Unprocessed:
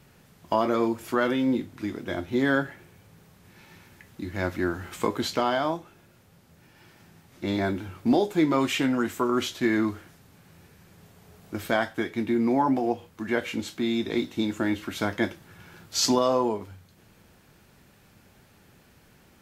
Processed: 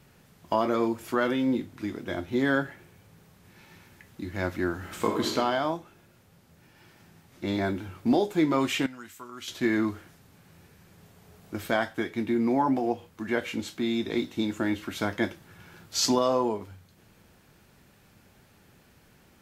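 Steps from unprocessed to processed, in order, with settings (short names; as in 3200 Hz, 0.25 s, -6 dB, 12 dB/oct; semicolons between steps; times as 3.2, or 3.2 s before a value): 4.77–5.36 reverb throw, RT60 0.87 s, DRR 2 dB; 8.86–9.48 passive tone stack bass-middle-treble 5-5-5; gain -1.5 dB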